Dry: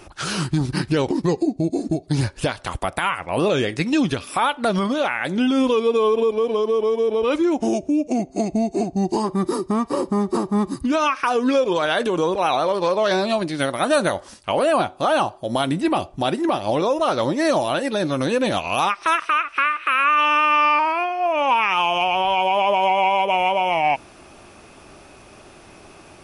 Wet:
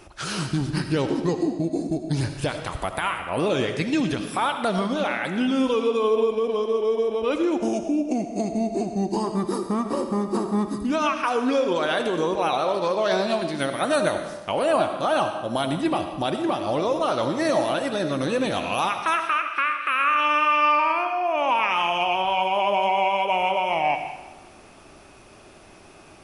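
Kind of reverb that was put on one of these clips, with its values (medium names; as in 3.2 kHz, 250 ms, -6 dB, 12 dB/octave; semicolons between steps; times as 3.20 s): algorithmic reverb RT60 1.1 s, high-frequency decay 0.9×, pre-delay 40 ms, DRR 6.5 dB; trim -4 dB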